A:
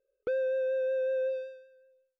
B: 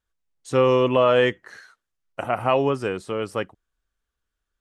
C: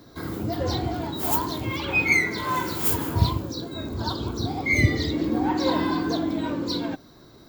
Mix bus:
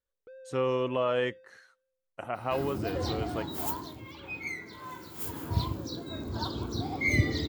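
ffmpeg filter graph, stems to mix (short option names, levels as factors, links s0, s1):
-filter_complex "[0:a]volume=0.106[s0];[1:a]volume=0.299[s1];[2:a]adelay=2350,volume=1.88,afade=t=out:st=3.43:d=0.59:silence=0.281838,afade=t=in:st=5.13:d=0.7:silence=0.266073[s2];[s0][s1][s2]amix=inputs=3:normalize=0"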